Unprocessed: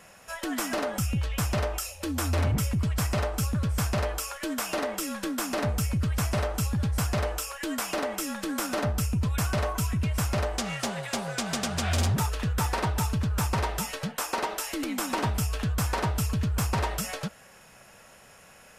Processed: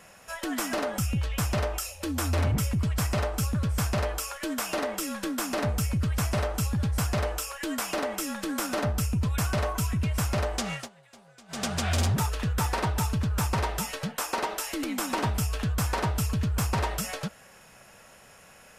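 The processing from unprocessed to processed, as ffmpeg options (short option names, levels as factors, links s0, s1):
-filter_complex "[0:a]asplit=3[s0][s1][s2];[s0]atrim=end=10.89,asetpts=PTS-STARTPTS,afade=t=out:st=10.73:d=0.16:silence=0.0749894[s3];[s1]atrim=start=10.89:end=11.48,asetpts=PTS-STARTPTS,volume=0.075[s4];[s2]atrim=start=11.48,asetpts=PTS-STARTPTS,afade=t=in:d=0.16:silence=0.0749894[s5];[s3][s4][s5]concat=n=3:v=0:a=1"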